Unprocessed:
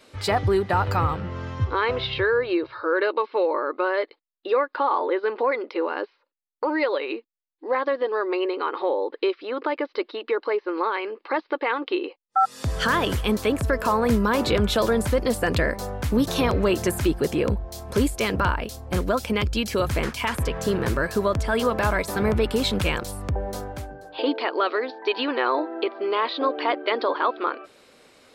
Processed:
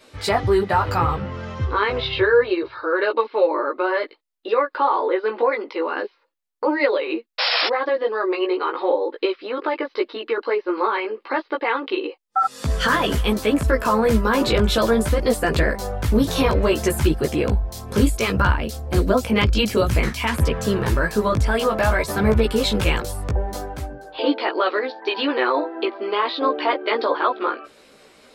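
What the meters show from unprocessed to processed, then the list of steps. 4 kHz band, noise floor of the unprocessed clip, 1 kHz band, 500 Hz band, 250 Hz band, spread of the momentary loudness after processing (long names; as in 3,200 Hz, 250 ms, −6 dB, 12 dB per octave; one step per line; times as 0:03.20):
+4.5 dB, −69 dBFS, +2.5 dB, +3.0 dB, +3.0 dB, 7 LU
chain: sound drawn into the spectrogram noise, 0:07.38–0:07.68, 470–5,500 Hz −23 dBFS
multi-voice chorus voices 4, 0.58 Hz, delay 16 ms, depth 3.1 ms
level +6 dB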